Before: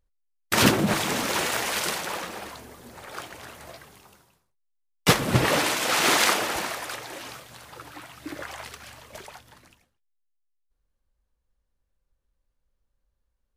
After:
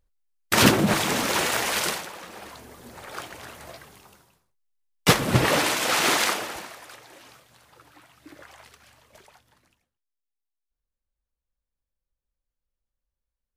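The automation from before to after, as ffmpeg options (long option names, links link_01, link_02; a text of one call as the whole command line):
ffmpeg -i in.wav -af "volume=13dB,afade=type=out:start_time=1.86:duration=0.26:silence=0.251189,afade=type=in:start_time=2.12:duration=0.75:silence=0.281838,afade=type=out:start_time=5.89:duration=0.8:silence=0.266073" out.wav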